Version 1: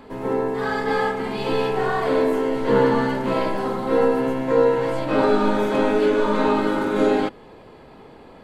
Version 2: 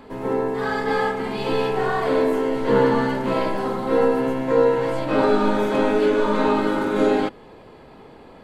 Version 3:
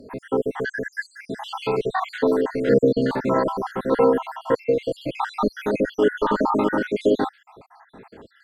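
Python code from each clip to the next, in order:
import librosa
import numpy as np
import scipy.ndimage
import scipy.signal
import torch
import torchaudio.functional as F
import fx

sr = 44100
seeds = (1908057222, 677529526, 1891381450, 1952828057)

y1 = x
y2 = fx.spec_dropout(y1, sr, seeds[0], share_pct=72)
y2 = fx.highpass(y2, sr, hz=55.0, slope=6)
y2 = fx.peak_eq(y2, sr, hz=1400.0, db=2.0, octaves=0.77)
y2 = F.gain(torch.from_numpy(y2), 2.0).numpy()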